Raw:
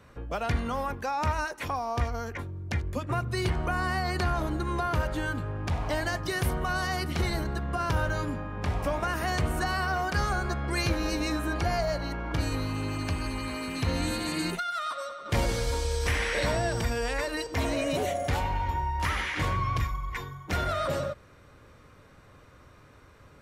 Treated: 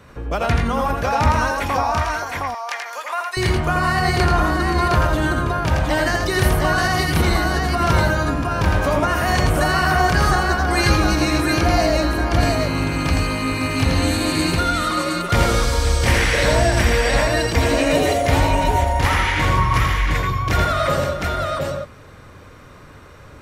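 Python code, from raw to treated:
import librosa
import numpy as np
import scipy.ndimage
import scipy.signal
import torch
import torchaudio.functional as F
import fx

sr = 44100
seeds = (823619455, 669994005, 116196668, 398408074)

y = fx.highpass(x, sr, hz=730.0, slope=24, at=(1.83, 3.37))
y = fx.echo_multitap(y, sr, ms=(83, 104, 526, 713), db=(-4.0, -9.5, -11.0, -3.0))
y = F.gain(torch.from_numpy(y), 8.5).numpy()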